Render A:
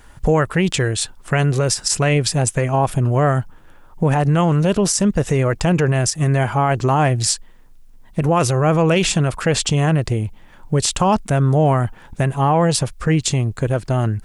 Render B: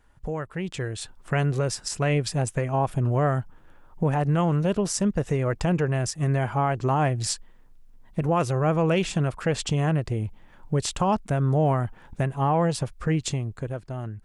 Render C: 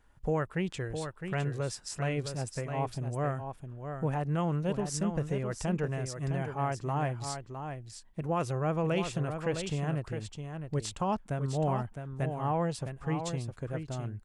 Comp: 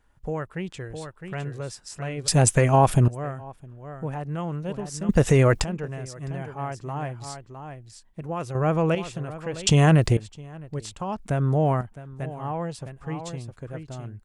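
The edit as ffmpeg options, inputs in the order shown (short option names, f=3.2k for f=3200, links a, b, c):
-filter_complex "[0:a]asplit=3[a][b][c];[1:a]asplit=2[d][e];[2:a]asplit=6[f][g][h][i][j][k];[f]atrim=end=2.282[l];[a]atrim=start=2.278:end=3.082[m];[g]atrim=start=3.078:end=5.092[n];[b]atrim=start=5.088:end=5.642[o];[h]atrim=start=5.638:end=8.552[p];[d]atrim=start=8.548:end=8.952[q];[i]atrim=start=8.948:end=9.672[r];[c]atrim=start=9.668:end=10.172[s];[j]atrim=start=10.168:end=11.192[t];[e]atrim=start=11.188:end=11.812[u];[k]atrim=start=11.808[v];[l][m]acrossfade=d=0.004:c1=hsin:c2=hsin[w];[w][n]acrossfade=d=0.004:c1=hsin:c2=hsin[x];[x][o]acrossfade=d=0.004:c1=hsin:c2=hsin[y];[y][p]acrossfade=d=0.004:c1=hsin:c2=hsin[z];[z][q]acrossfade=d=0.004:c1=hsin:c2=hsin[aa];[aa][r]acrossfade=d=0.004:c1=hsin:c2=hsin[ab];[ab][s]acrossfade=d=0.004:c1=hsin:c2=hsin[ac];[ac][t]acrossfade=d=0.004:c1=hsin:c2=hsin[ad];[ad][u]acrossfade=d=0.004:c1=hsin:c2=hsin[ae];[ae][v]acrossfade=d=0.004:c1=hsin:c2=hsin"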